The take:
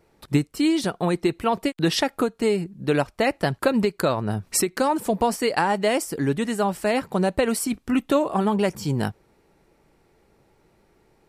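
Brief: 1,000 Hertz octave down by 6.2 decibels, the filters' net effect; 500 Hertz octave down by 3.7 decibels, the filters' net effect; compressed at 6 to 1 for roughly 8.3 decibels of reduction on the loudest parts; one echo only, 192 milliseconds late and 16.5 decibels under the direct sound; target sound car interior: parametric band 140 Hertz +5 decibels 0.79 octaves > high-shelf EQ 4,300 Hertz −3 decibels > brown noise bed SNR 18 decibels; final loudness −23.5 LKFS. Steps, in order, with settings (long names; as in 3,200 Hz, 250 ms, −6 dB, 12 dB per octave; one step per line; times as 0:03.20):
parametric band 500 Hz −3 dB
parametric band 1,000 Hz −7 dB
downward compressor 6 to 1, threshold −25 dBFS
parametric band 140 Hz +5 dB 0.79 octaves
high-shelf EQ 4,300 Hz −3 dB
single-tap delay 192 ms −16.5 dB
brown noise bed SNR 18 dB
level +6 dB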